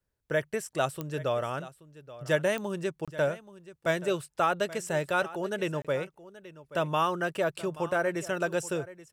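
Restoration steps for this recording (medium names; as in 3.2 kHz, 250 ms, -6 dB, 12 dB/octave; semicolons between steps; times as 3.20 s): de-click; interpolate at 3.05/5.82 s, 26 ms; inverse comb 829 ms -17 dB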